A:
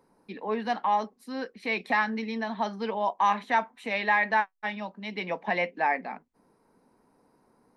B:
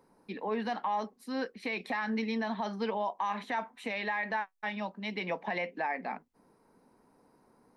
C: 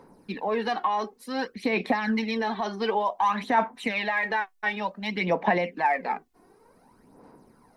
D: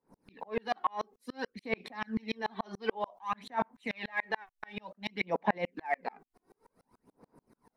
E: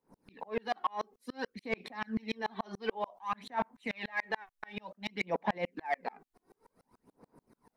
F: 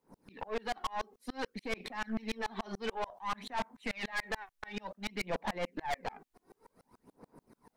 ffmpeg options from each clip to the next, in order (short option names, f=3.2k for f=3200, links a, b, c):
-af "alimiter=limit=-23.5dB:level=0:latency=1:release=83"
-af "aphaser=in_gain=1:out_gain=1:delay=2.8:decay=0.57:speed=0.55:type=sinusoidal,volume=6dB"
-af "aeval=exprs='val(0)*pow(10,-38*if(lt(mod(-6.9*n/s,1),2*abs(-6.9)/1000),1-mod(-6.9*n/s,1)/(2*abs(-6.9)/1000),(mod(-6.9*n/s,1)-2*abs(-6.9)/1000)/(1-2*abs(-6.9)/1000))/20)':c=same"
-af "asoftclip=type=tanh:threshold=-20.5dB"
-af "aeval=exprs='(tanh(63.1*val(0)+0.5)-tanh(0.5))/63.1':c=same,volume=5.5dB"